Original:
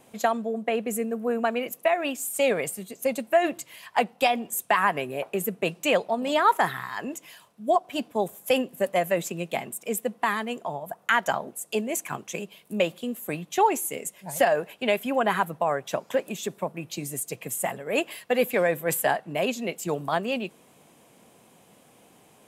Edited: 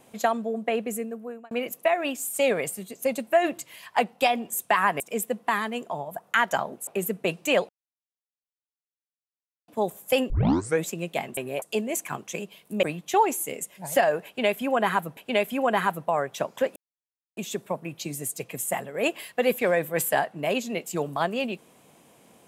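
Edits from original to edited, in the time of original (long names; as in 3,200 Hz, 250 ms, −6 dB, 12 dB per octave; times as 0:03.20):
0:00.78–0:01.51: fade out
0:05.00–0:05.25: swap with 0:09.75–0:11.62
0:06.07–0:08.06: silence
0:08.68: tape start 0.53 s
0:12.83–0:13.27: remove
0:14.70–0:15.61: repeat, 2 plays
0:16.29: splice in silence 0.61 s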